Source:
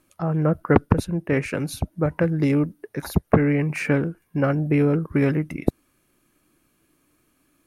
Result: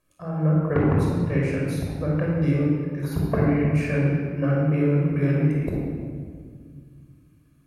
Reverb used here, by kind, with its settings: simulated room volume 3100 m³, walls mixed, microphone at 5.6 m; trim -12 dB

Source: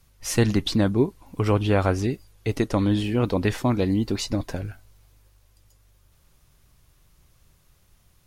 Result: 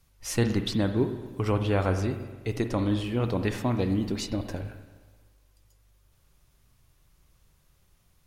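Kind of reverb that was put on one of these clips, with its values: spring tank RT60 1.3 s, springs 42/59 ms, chirp 50 ms, DRR 7.5 dB; trim -5 dB

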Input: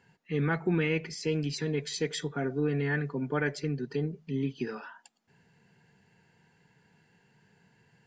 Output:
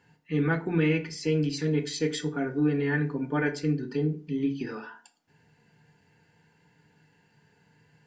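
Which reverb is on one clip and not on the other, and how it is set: FDN reverb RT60 0.36 s, low-frequency decay 1.3×, high-frequency decay 0.75×, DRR 4.5 dB

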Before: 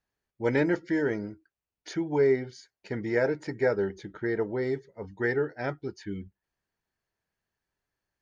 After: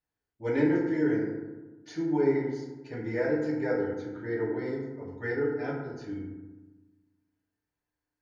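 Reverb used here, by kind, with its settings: FDN reverb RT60 1.2 s, low-frequency decay 1.3×, high-frequency decay 0.4×, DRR -5.5 dB; trim -10 dB

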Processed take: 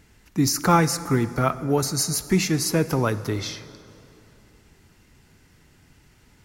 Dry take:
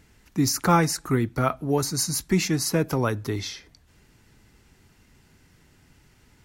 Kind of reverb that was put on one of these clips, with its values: plate-style reverb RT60 3 s, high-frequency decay 0.7×, DRR 13.5 dB; trim +1.5 dB

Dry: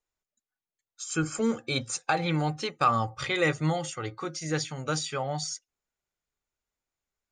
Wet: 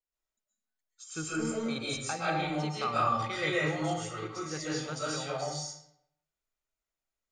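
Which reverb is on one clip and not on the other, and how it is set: algorithmic reverb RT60 0.73 s, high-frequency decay 0.8×, pre-delay 95 ms, DRR -7 dB; trim -10.5 dB

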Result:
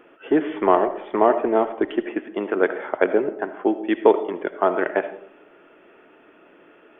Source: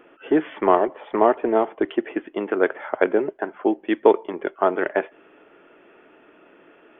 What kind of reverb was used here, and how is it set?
algorithmic reverb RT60 0.61 s, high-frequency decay 0.35×, pre-delay 35 ms, DRR 11 dB

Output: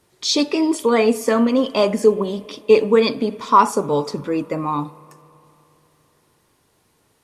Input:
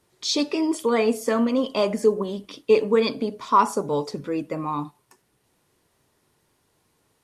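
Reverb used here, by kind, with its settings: spring tank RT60 3.3 s, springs 33/56 ms, chirp 70 ms, DRR 20 dB; trim +5 dB

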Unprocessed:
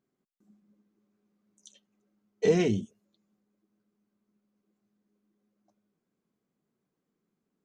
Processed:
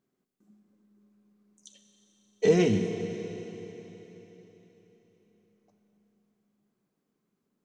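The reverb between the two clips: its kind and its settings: Schroeder reverb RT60 4 s, combs from 30 ms, DRR 6 dB; trim +1.5 dB

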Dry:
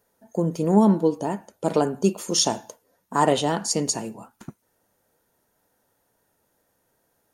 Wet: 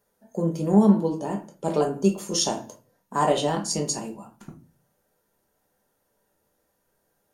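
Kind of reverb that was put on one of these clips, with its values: simulated room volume 150 m³, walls furnished, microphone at 1.2 m; trim -4.5 dB

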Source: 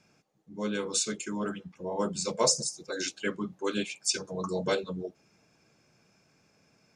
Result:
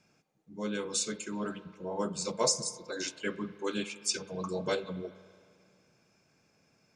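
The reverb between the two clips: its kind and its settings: spring tank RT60 2.2 s, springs 32/53 ms, chirp 30 ms, DRR 14 dB; trim -3 dB

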